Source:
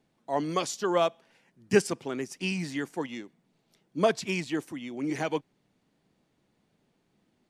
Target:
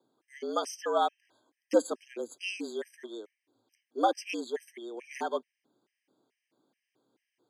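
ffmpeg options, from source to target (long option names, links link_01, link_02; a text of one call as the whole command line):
ffmpeg -i in.wav -af "afreqshift=110,afftfilt=real='re*gt(sin(2*PI*2.3*pts/sr)*(1-2*mod(floor(b*sr/1024/1600),2)),0)':imag='im*gt(sin(2*PI*2.3*pts/sr)*(1-2*mod(floor(b*sr/1024/1600),2)),0)':win_size=1024:overlap=0.75,volume=-2dB" out.wav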